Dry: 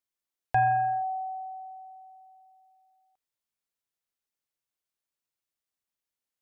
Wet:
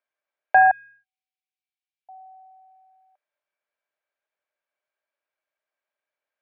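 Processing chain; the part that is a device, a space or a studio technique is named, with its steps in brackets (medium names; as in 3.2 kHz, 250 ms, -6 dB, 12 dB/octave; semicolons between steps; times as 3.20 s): tin-can telephone (band-pass 510–2100 Hz; small resonant body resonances 600/1600/2300 Hz, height 12 dB); 0.71–2.09 s: inverse Chebyshev band-stop 250–810 Hz, stop band 70 dB; trim +7.5 dB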